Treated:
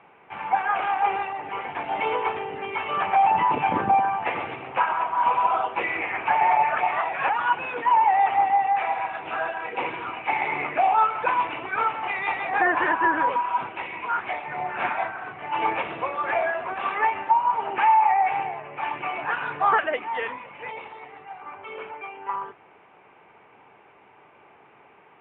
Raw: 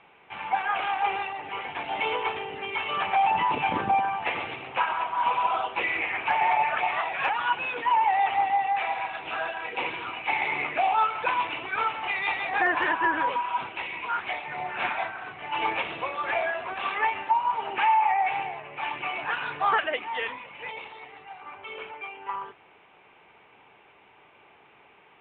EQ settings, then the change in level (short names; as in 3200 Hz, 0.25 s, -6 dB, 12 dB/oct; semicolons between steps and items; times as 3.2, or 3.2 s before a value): HPF 78 Hz; LPF 1900 Hz 12 dB/oct; +4.0 dB